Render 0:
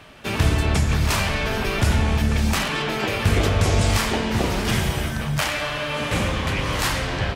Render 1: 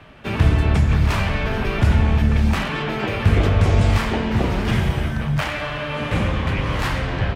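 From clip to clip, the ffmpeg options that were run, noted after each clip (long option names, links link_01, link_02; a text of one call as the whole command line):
ffmpeg -i in.wav -filter_complex "[0:a]bass=frequency=250:gain=4,treble=frequency=4000:gain=-12,acrossover=split=230|7000[link_01][link_02][link_03];[link_03]aeval=exprs='(mod(39.8*val(0)+1,2)-1)/39.8':channel_layout=same[link_04];[link_01][link_02][link_04]amix=inputs=3:normalize=0" out.wav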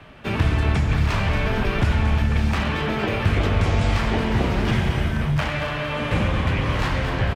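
ffmpeg -i in.wav -filter_complex "[0:a]aecho=1:1:228|456|684|912:0.282|0.121|0.0521|0.0224,acrossover=split=820|7300[link_01][link_02][link_03];[link_01]acompressor=threshold=-16dB:ratio=4[link_04];[link_02]acompressor=threshold=-25dB:ratio=4[link_05];[link_03]acompressor=threshold=-55dB:ratio=4[link_06];[link_04][link_05][link_06]amix=inputs=3:normalize=0" out.wav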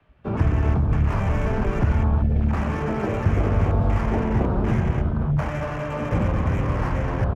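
ffmpeg -i in.wav -filter_complex "[0:a]afwtdn=0.0398,highshelf=frequency=3400:gain=-10.5,acrossover=split=190|650|1300[link_01][link_02][link_03][link_04];[link_04]asoftclip=type=tanh:threshold=-38dB[link_05];[link_01][link_02][link_03][link_05]amix=inputs=4:normalize=0" out.wav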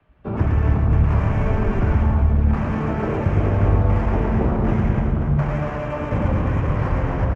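ffmpeg -i in.wav -af "lowpass=frequency=3000:poles=1,aecho=1:1:110|275|522.5|893.8|1451:0.631|0.398|0.251|0.158|0.1" out.wav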